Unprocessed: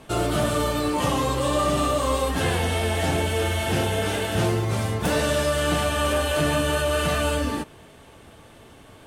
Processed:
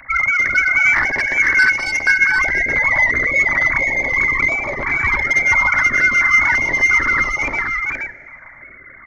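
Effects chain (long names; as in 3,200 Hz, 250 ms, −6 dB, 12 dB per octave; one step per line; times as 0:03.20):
three sine waves on the formant tracks
0:04.30–0:05.24: spectral tilt +2.5 dB per octave
in parallel at +3 dB: downward compressor 10 to 1, threshold −28 dBFS, peak gain reduction 15.5 dB
on the sum: notch comb filter 280 Hz
voice inversion scrambler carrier 2,700 Hz
soft clipping −13.5 dBFS, distortion −18 dB
on a send: single-tap delay 475 ms −5 dB
on the sum: dense smooth reverb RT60 1.9 s, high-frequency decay 0.95×, DRR 18 dB
notch on a step sequencer 2.9 Hz 390–1,600 Hz
level +7.5 dB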